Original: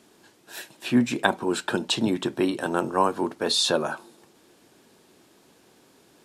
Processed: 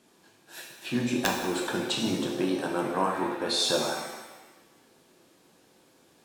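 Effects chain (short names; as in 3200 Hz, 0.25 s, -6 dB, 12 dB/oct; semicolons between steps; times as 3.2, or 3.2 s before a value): wrapped overs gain 8 dB; shimmer reverb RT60 1.1 s, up +7 st, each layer -8 dB, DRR 0 dB; gain -6.5 dB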